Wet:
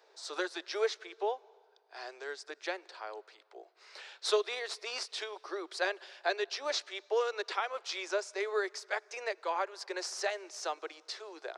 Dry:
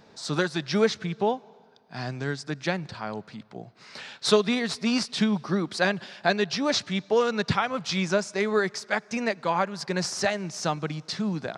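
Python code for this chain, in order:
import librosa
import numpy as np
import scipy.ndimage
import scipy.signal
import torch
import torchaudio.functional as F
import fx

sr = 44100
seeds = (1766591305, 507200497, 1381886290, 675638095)

y = scipy.signal.sosfilt(scipy.signal.butter(12, 350.0, 'highpass', fs=sr, output='sos'), x)
y = y * 10.0 ** (-8.0 / 20.0)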